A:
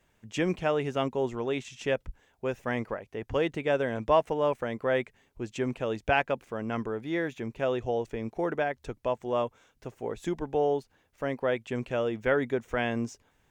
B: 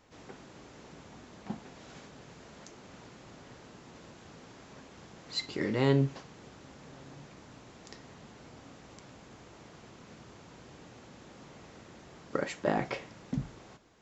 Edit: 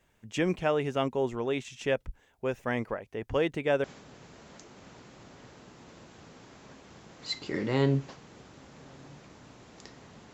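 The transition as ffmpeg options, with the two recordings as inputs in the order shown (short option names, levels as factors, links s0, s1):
-filter_complex "[0:a]apad=whole_dur=10.33,atrim=end=10.33,atrim=end=3.842[s0];[1:a]atrim=start=1.908:end=8.4[s1];[s0][s1]acrossfade=d=0.004:c1=hsin:c2=hsin"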